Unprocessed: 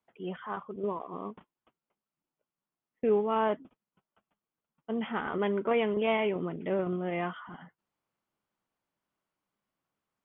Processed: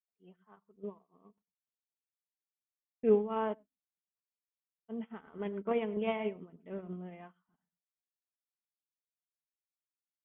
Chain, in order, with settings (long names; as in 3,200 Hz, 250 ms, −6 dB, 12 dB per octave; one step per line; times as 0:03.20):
low-shelf EQ 380 Hz +5.5 dB
comb filter 4.5 ms, depth 30%
on a send at −16.5 dB: convolution reverb RT60 0.10 s, pre-delay 97 ms
on the sum: expander for the loud parts 2.5 to 1, over −45 dBFS
level −3 dB